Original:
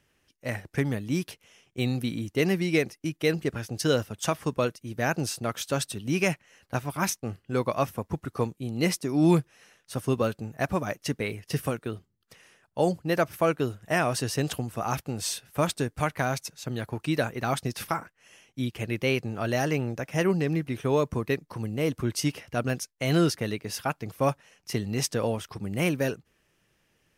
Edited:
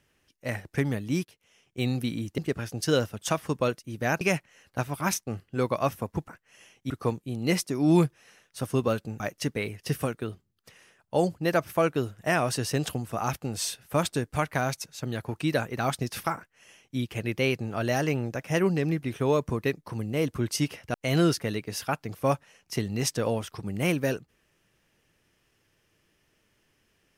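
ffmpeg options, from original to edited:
-filter_complex "[0:a]asplit=8[a][b][c][d][e][f][g][h];[a]atrim=end=1.25,asetpts=PTS-STARTPTS,afade=t=out:st=1.246:d=0.004:c=hsin:silence=0.11885[i];[b]atrim=start=1.25:end=2.382,asetpts=PTS-STARTPTS,afade=t=in:d=0.63:silence=0.11885[j];[c]atrim=start=3.348:end=5.182[k];[d]atrim=start=6.168:end=8.242[l];[e]atrim=start=17.998:end=18.622[m];[f]atrim=start=8.238:end=10.542[n];[g]atrim=start=10.838:end=22.582[o];[h]atrim=start=22.908[p];[i][j]concat=n=2:v=0:a=1[q];[q][k]acrossfade=d=0.004:c1=hsin:c2=hsin[r];[r][l]acrossfade=d=0.004:c1=hsin:c2=hsin[s];[s][m]acrossfade=d=0.004:c1=hsin:c2=hsin[t];[t][n]acrossfade=d=0.004:c1=hsin:c2=hsin[u];[u][o]acrossfade=d=0.004:c1=hsin:c2=hsin[v];[v][p]acrossfade=d=0.004:c1=hsin:c2=hsin"

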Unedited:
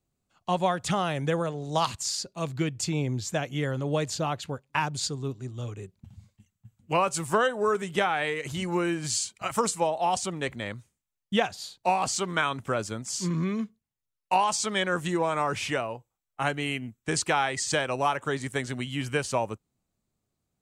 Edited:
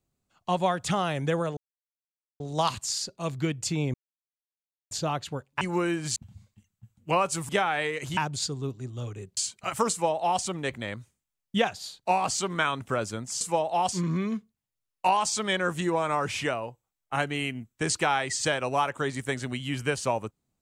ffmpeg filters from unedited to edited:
-filter_complex "[0:a]asplit=11[a][b][c][d][e][f][g][h][i][j][k];[a]atrim=end=1.57,asetpts=PTS-STARTPTS,afade=t=out:st=1.566:d=0.004:c=hsin,apad=pad_dur=0.83[l];[b]atrim=start=1.57:end=3.11,asetpts=PTS-STARTPTS,afade=t=in:d=0.004:c=hsin,afade=t=out:st=1.536:d=0.004:c=hsin[m];[c]atrim=start=3.11:end=4.08,asetpts=PTS-STARTPTS,volume=0[n];[d]atrim=start=4.08:end=4.782,asetpts=PTS-STARTPTS,afade=t=in:d=0.004:c=hsin[o];[e]atrim=start=8.598:end=9.152[p];[f]atrim=start=5.978:end=7.312[q];[g]atrim=start=7.918:end=8.602[r];[h]atrim=start=4.778:end=5.982[s];[i]atrim=start=9.148:end=13.192[t];[j]atrim=start=9.688:end=10.202[u];[k]atrim=start=13.188[v];[l][m][n][o]concat=n=4:v=0:a=1[w];[w][p]acrossfade=d=0.004:c1=hsin:c2=hsin[x];[x][q]acrossfade=d=0.004:c1=hsin:c2=hsin[y];[y][r]acrossfade=d=0.004:c1=hsin:c2=hsin[z];[z][s]acrossfade=d=0.004:c1=hsin:c2=hsin[aa];[aa][t]acrossfade=d=0.004:c1=hsin:c2=hsin[ab];[ab][u]acrossfade=d=0.004:c1=hsin:c2=hsin[ac];[ac][v]acrossfade=d=0.004:c1=hsin:c2=hsin"

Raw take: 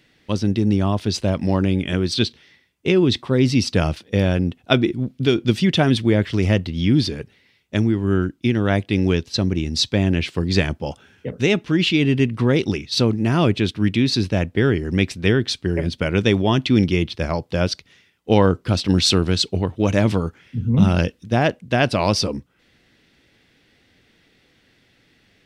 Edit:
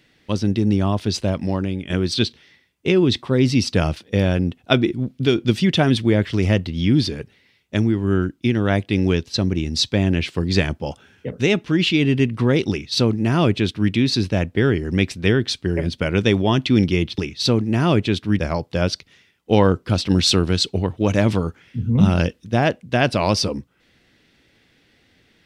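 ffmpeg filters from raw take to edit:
-filter_complex "[0:a]asplit=4[a][b][c][d];[a]atrim=end=1.9,asetpts=PTS-STARTPTS,afade=t=out:st=1.17:d=0.73:silence=0.375837[e];[b]atrim=start=1.9:end=17.182,asetpts=PTS-STARTPTS,afade=t=in:d=0.004:c=hsin:silence=0.375837[f];[c]atrim=start=12.698:end=13.912[g];[d]atrim=start=17.178[h];[e][f]concat=n=2:v=0:a=1[i];[i][g]acrossfade=d=0.004:c1=hsin:c2=hsin[j];[j][h]acrossfade=d=0.004:c1=hsin:c2=hsin"

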